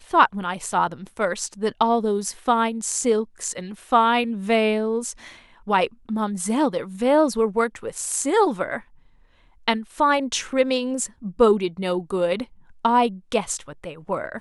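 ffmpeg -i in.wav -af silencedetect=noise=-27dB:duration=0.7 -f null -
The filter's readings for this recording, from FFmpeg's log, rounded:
silence_start: 8.78
silence_end: 9.68 | silence_duration: 0.90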